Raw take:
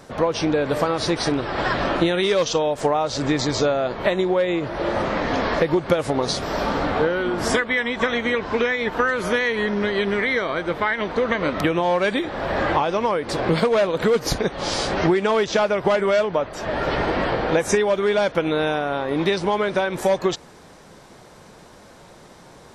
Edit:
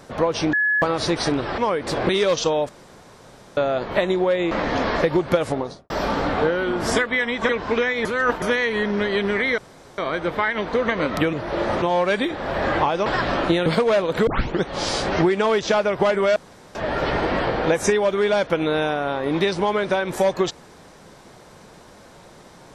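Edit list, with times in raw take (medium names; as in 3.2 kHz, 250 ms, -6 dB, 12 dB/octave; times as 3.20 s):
0.53–0.82 s: bleep 1.7 kHz -16.5 dBFS
1.58–2.18 s: swap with 13.00–13.51 s
2.78–3.66 s: room tone
4.60–5.09 s: move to 11.76 s
5.99–6.48 s: studio fade out
8.07–8.32 s: delete
8.88–9.25 s: reverse
10.41 s: insert room tone 0.40 s
14.12 s: tape start 0.36 s
16.21–16.60 s: room tone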